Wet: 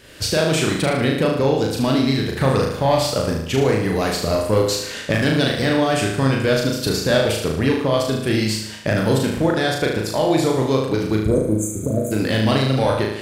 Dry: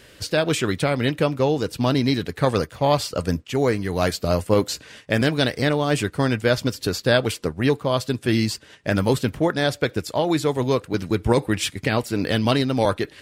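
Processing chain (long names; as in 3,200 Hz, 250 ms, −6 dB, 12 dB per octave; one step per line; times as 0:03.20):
camcorder AGC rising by 28 dB per second
healed spectral selection 0:11.26–0:12.09, 690–6,100 Hz before
soft clipping −8.5 dBFS, distortion −23 dB
flutter between parallel walls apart 6.4 metres, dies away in 0.76 s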